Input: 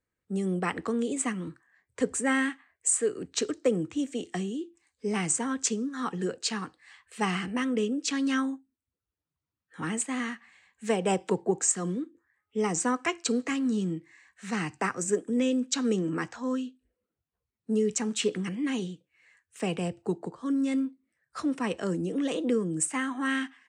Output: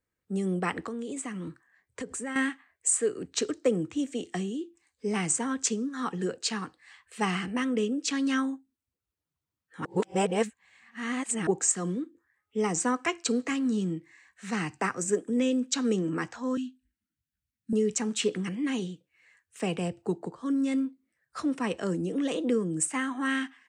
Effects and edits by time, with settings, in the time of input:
0.81–2.36 compressor, threshold -32 dBFS
9.85–11.47 reverse
16.57–17.73 elliptic band-stop 290–1500 Hz

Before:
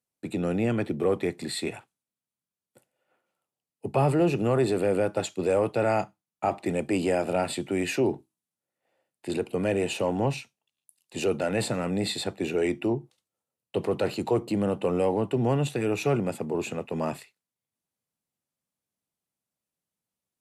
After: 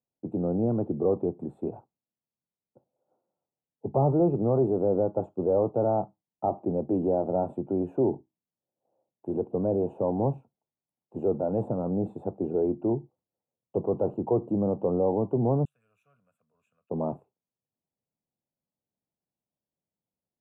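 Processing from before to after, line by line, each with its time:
15.65–16.9 inverse Chebyshev high-pass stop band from 920 Hz
whole clip: inverse Chebyshev low-pass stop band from 1800 Hz, stop band 40 dB

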